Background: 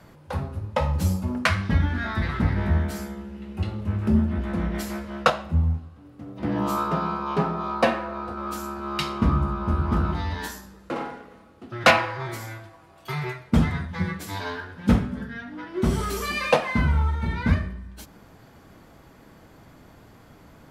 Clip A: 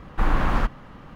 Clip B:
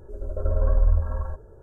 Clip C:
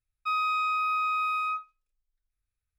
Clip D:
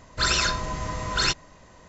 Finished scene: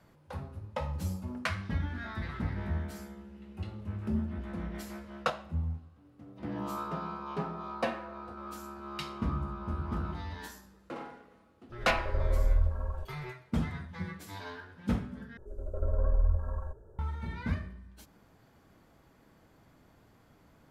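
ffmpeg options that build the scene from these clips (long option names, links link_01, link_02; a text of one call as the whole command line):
ffmpeg -i bed.wav -i cue0.wav -i cue1.wav -filter_complex "[2:a]asplit=2[link_01][link_02];[0:a]volume=-11.5dB,asplit=2[link_03][link_04];[link_03]atrim=end=15.374[link_05];[link_02]atrim=end=1.62,asetpts=PTS-STARTPTS,volume=-7dB[link_06];[link_04]atrim=start=16.986[link_07];[link_01]atrim=end=1.62,asetpts=PTS-STARTPTS,volume=-6.5dB,afade=type=in:duration=0.004:curve=hsin,afade=type=out:start_time=1.616:duration=0.004:curve=hsin,adelay=11690[link_08];[link_05][link_06]acrossfade=duration=0.004:curve1=hsin:curve2=hsin[link_09];[link_09][link_07]acrossfade=duration=0.004:curve1=hsin:curve2=hsin[link_10];[link_10][link_08]amix=inputs=2:normalize=0" out.wav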